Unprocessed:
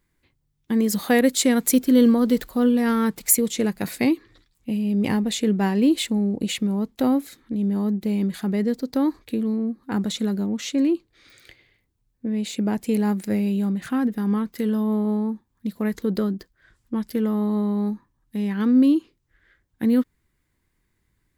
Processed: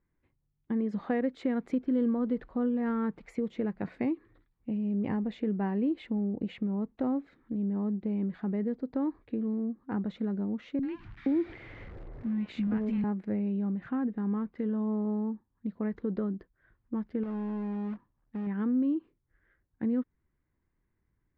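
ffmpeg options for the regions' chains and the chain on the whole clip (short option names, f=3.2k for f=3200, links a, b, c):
-filter_complex "[0:a]asettb=1/sr,asplit=3[a][b][c];[a]atrim=end=10.794[d];[b]atrim=start=10.79:end=13.04,asetpts=PTS-STARTPTS,afade=t=in:d=0.004:c=qsin,afade=t=out:st=2.246:d=0.004:c=qsin,aeval=exprs='val(0)+0.5*0.0133*sgn(val(0))':c=same,acontrast=75,acrossover=split=220|1100[e][f][g];[g]adelay=40[h];[f]adelay=470[i];[e][i][h]amix=inputs=3:normalize=0,atrim=end_sample=99225[j];[c]atrim=start=13.036[k];[d][j]acrossfade=d=0.004:c1=hsin:c2=qsin[l];[l][k]acrossfade=d=0.004:c1=qsin:c2=hsin,asettb=1/sr,asplit=3[m][n][o];[m]atrim=end=17.234[p];[n]atrim=start=17.23:end=18.47,asetpts=PTS-STARTPTS,afade=t=in:d=0.004:c=qsin,afade=t=out:st=1.236:d=0.004:c=qsin,acompressor=threshold=-26dB:ratio=4:attack=3.2:release=140:knee=1:detection=peak,acrusher=bits=2:mode=log:mix=0:aa=0.000001[q];[o]atrim=start=18.466[r];[p][q]acrossfade=d=0.004:c1=hsin:c2=qsin[s];[s][r]acrossfade=d=0.004:c1=qsin:c2=hsin,lowpass=1.9k,aemphasis=mode=reproduction:type=75fm,acompressor=threshold=-22dB:ratio=2,volume=-7dB"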